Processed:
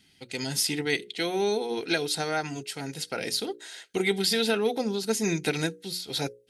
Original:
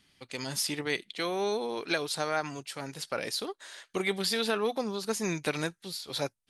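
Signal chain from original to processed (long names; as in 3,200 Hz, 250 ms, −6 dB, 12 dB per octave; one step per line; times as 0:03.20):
parametric band 1,100 Hz −12 dB 0.56 octaves
mains-hum notches 60/120/180/240/300/360/420/480/540 Hz
notch comb filter 580 Hz
level +6 dB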